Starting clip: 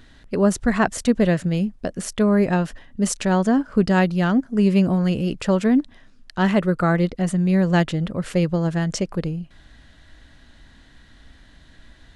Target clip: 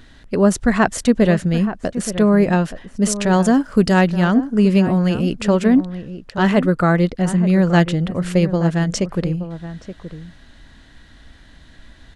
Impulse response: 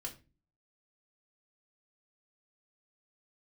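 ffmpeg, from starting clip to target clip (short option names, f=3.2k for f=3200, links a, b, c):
-filter_complex "[0:a]asettb=1/sr,asplit=3[a][b][c];[a]atrim=end=3.334[d];[b]atrim=start=3.33:end=3.94,asetpts=PTS-STARTPTS,afade=t=in:d=0.004:c=qsin,afade=t=out:st=0.606:d=0.004:c=qsin,aemphasis=mode=production:type=50kf[e];[c]atrim=start=3.936[f];[d][e]acrossfade=d=0.004:c1=hsin:c2=qsin[g];[g][f]acrossfade=d=0.004:c1=qsin:c2=hsin,asplit=2[h][i];[i]adelay=874.6,volume=-12dB,highshelf=f=4k:g=-19.7[j];[h][j]amix=inputs=2:normalize=0,volume=3.5dB"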